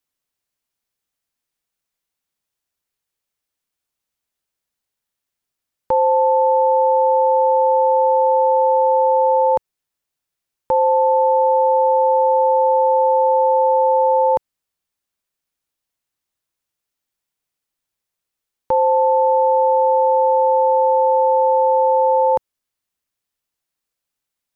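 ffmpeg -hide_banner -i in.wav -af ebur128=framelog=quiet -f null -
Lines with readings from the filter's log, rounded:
Integrated loudness:
  I:         -15.5 LUFS
  Threshold: -25.4 LUFS
Loudness range:
  LRA:         7.0 LU
  Threshold: -37.1 LUFS
  LRA low:   -22.1 LUFS
  LRA high:  -15.1 LUFS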